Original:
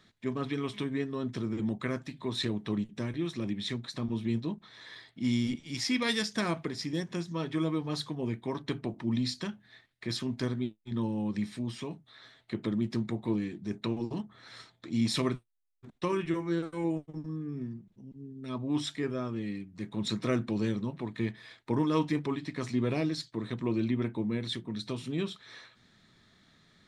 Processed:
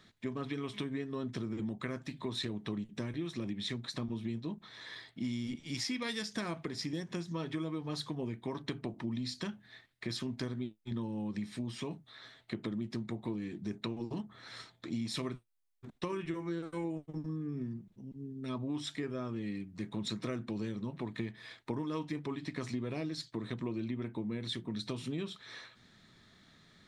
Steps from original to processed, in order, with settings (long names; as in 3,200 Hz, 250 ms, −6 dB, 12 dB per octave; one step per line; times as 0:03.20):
downward compressor, threshold −35 dBFS, peak gain reduction 12 dB
level +1 dB